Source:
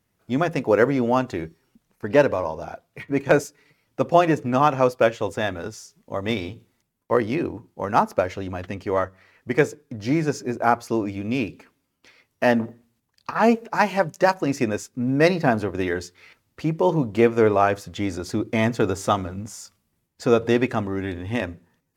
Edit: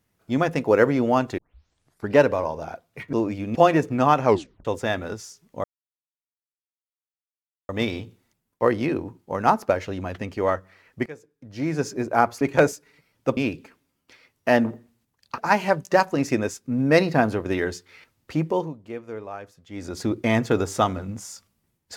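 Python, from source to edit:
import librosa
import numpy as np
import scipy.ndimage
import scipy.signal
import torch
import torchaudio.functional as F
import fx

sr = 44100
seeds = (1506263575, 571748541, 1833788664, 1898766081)

y = fx.edit(x, sr, fx.tape_start(start_s=1.38, length_s=0.71),
    fx.swap(start_s=3.13, length_s=0.96, other_s=10.9, other_length_s=0.42),
    fx.tape_stop(start_s=4.8, length_s=0.39),
    fx.insert_silence(at_s=6.18, length_s=2.05),
    fx.fade_in_from(start_s=9.55, length_s=0.81, curve='qua', floor_db=-21.0),
    fx.cut(start_s=13.33, length_s=0.34),
    fx.fade_down_up(start_s=16.71, length_s=1.59, db=-17.5, fade_s=0.32), tone=tone)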